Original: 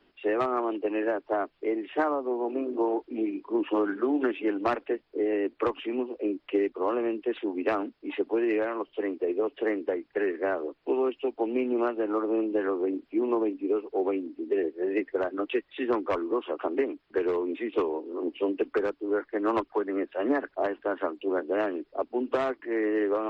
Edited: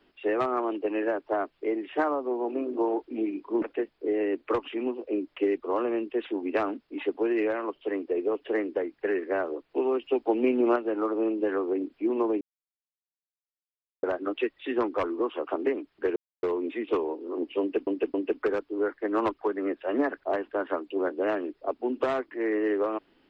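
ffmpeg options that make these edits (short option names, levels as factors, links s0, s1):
-filter_complex "[0:a]asplit=9[s0][s1][s2][s3][s4][s5][s6][s7][s8];[s0]atrim=end=3.622[s9];[s1]atrim=start=4.738:end=11.142[s10];[s2]atrim=start=11.138:end=11.882,asetpts=PTS-STARTPTS,volume=1.5[s11];[s3]atrim=start=11.878:end=13.53,asetpts=PTS-STARTPTS,afade=t=out:st=1.648:d=0.004:c=hsin[s12];[s4]atrim=start=13.53:end=15.15,asetpts=PTS-STARTPTS,volume=0[s13];[s5]atrim=start=15.15:end=17.28,asetpts=PTS-STARTPTS,afade=t=in:d=0.004:c=hsin,afade=t=out:st=2.126:d=0.004:c=hsin,apad=pad_dur=0.27[s14];[s6]atrim=start=17.28:end=18.722,asetpts=PTS-STARTPTS,afade=t=in:d=0.004:c=hsin[s15];[s7]atrim=start=18.448:end=18.722[s16];[s8]atrim=start=18.448[s17];[s9][s10]acrossfade=d=0.004:c1=hsin:c2=hsin[s18];[s18][s11]acrossfade=d=0.004:c1=hsin:c2=hsin[s19];[s12][s13][s14][s15]concat=n=4:v=0:a=1[s20];[s19][s20]acrossfade=d=0.004:c1=hsin:c2=hsin[s21];[s21][s16]acrossfade=d=0.004:c1=hsin:c2=hsin[s22];[s22][s17]acrossfade=d=0.004:c1=hsin:c2=hsin"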